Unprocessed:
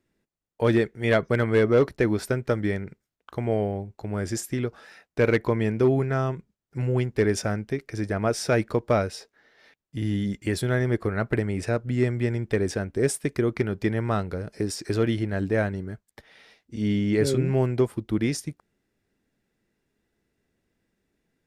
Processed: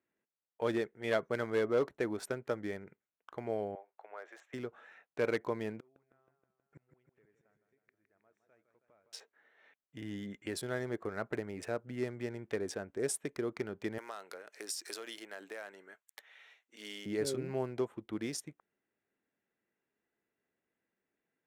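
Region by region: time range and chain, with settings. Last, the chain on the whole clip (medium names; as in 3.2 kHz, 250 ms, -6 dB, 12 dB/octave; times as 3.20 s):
3.75–4.54 s: high-pass 560 Hz 24 dB/octave + distance through air 190 m
5.80–9.13 s: inverted gate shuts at -27 dBFS, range -38 dB + modulated delay 159 ms, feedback 66%, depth 99 cents, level -9 dB
13.98–17.06 s: high-pass 320 Hz + tilt EQ +4 dB/octave + compression 12:1, threshold -28 dBFS
whole clip: local Wiener filter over 9 samples; high-pass 670 Hz 6 dB/octave; dynamic bell 2.1 kHz, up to -6 dB, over -46 dBFS, Q 0.97; trim -5 dB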